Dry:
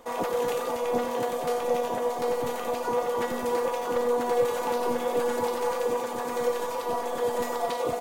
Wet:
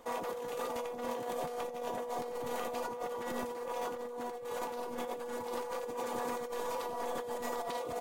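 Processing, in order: negative-ratio compressor -31 dBFS, ratio -1; gain -7.5 dB

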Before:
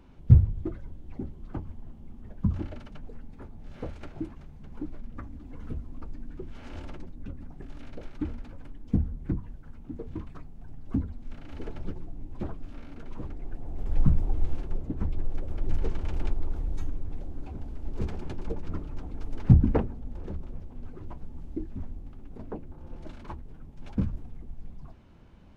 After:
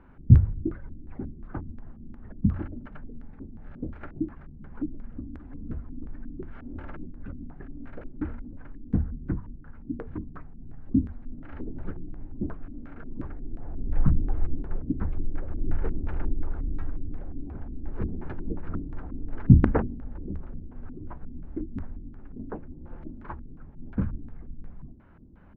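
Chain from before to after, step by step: LFO low-pass square 2.8 Hz 280–1600 Hz

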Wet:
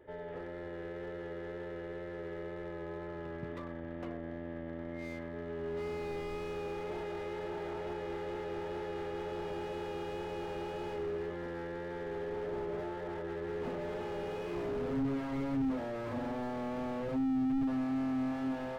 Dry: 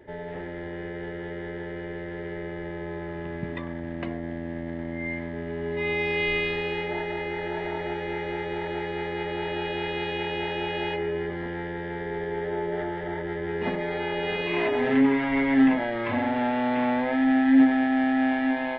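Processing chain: thirty-one-band EQ 200 Hz -7 dB, 500 Hz +7 dB, 1250 Hz +8 dB, 2000 Hz -4 dB; wow and flutter 17 cents; 17.07–17.58 doubler 15 ms -3 dB; slew limiter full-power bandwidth 23 Hz; gain -8.5 dB

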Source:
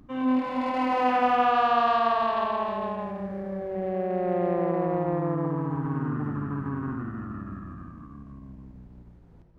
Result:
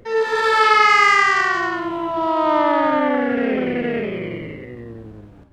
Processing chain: AGC gain up to 4 dB; speed mistake 45 rpm record played at 78 rpm; gain +5 dB

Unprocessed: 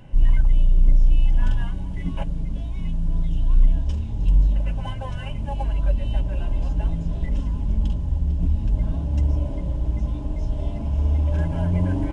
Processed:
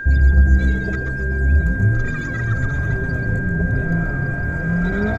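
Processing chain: high shelf 2200 Hz -9.5 dB; speed mistake 33 rpm record played at 78 rpm; frequency-shifting echo 0.132 s, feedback 37%, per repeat -130 Hz, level -6 dB; whine 1600 Hz -26 dBFS

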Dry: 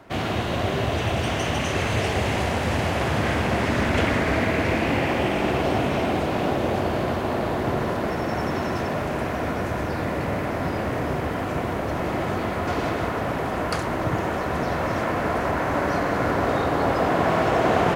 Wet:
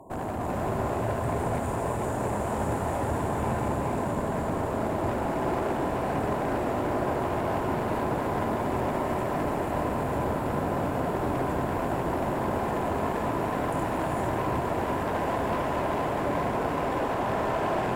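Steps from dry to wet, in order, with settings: limiter -19.5 dBFS, peak gain reduction 11.5 dB; brick-wall FIR band-stop 1100–6800 Hz; bell 2000 Hz +9.5 dB 1.4 oct; notches 50/100/150 Hz; split-band echo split 770 Hz, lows 0.223 s, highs 0.47 s, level -15 dB; one-sided clip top -40 dBFS, bottom -22.5 dBFS; non-linear reverb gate 0.49 s rising, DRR -1.5 dB

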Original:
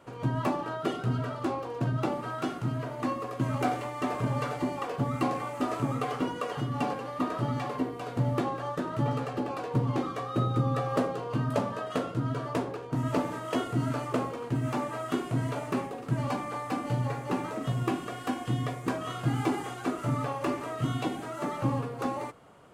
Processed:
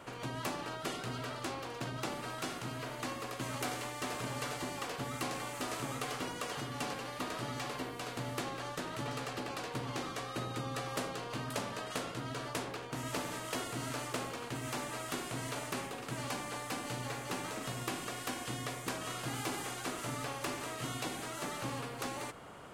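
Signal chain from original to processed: spectral compressor 2:1; gain -7 dB

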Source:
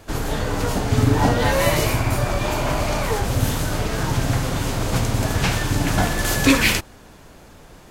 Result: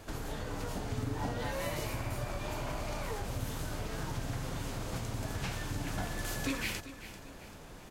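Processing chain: compressor 2:1, threshold -39 dBFS, peak gain reduction 15.5 dB; on a send: feedback echo 0.391 s, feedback 42%, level -13.5 dB; on the sum: gain -5 dB

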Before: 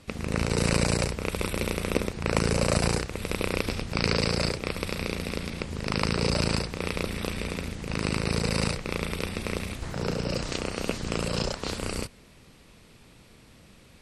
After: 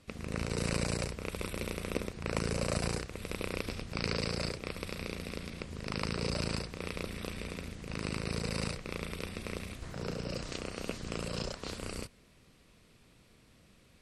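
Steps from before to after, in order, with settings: notch 860 Hz, Q 12; gain -8.5 dB

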